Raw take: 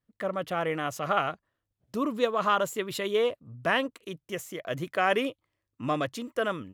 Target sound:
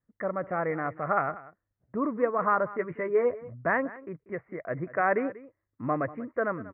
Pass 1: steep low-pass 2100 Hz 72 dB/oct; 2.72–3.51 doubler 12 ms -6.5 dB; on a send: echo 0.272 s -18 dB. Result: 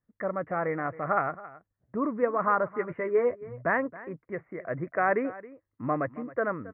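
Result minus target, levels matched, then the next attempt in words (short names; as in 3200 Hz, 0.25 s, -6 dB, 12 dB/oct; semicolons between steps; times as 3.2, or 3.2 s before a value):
echo 82 ms late
steep low-pass 2100 Hz 72 dB/oct; 2.72–3.51 doubler 12 ms -6.5 dB; on a send: echo 0.19 s -18 dB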